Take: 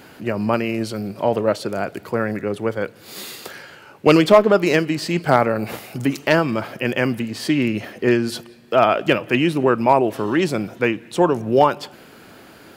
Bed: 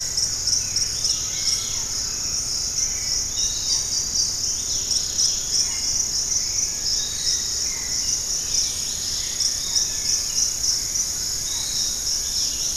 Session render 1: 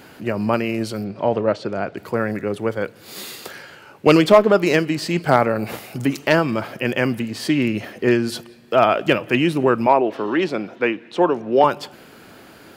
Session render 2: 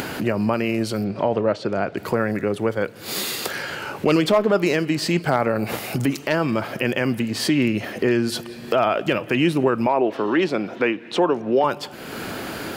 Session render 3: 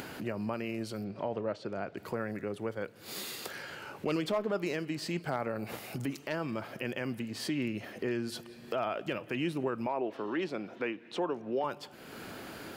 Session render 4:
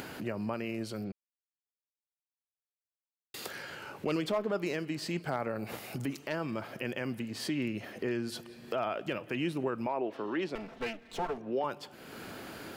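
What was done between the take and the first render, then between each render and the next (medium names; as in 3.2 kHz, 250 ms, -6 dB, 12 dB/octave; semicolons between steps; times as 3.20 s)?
1.04–1.98 s: distance through air 130 m; 9.87–11.64 s: three-band isolator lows -16 dB, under 200 Hz, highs -19 dB, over 5 kHz
upward compressor, threshold -17 dBFS; peak limiter -9 dBFS, peak gain reduction 7.5 dB
trim -14 dB
1.12–3.34 s: mute; 10.55–11.38 s: comb filter that takes the minimum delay 4.5 ms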